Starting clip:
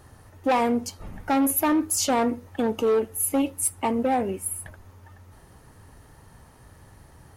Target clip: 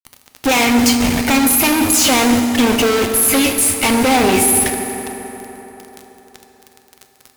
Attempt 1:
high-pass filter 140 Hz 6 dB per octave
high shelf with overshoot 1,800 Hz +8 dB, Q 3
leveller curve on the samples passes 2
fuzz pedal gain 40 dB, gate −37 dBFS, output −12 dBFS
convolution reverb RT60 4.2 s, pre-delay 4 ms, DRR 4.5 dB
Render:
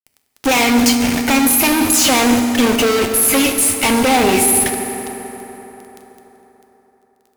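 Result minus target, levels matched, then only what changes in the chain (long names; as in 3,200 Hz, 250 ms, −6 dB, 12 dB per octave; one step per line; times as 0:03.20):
125 Hz band −2.5 dB
change: high-pass filter 61 Hz 6 dB per octave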